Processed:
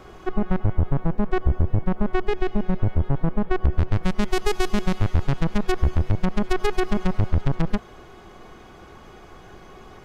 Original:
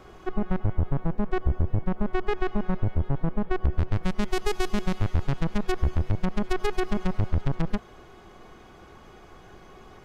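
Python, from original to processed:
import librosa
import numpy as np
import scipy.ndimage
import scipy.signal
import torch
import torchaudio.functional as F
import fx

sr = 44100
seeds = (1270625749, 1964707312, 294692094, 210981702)

y = fx.peak_eq(x, sr, hz=1200.0, db=-6.5, octaves=1.1, at=(2.22, 2.8))
y = F.gain(torch.from_numpy(y), 4.0).numpy()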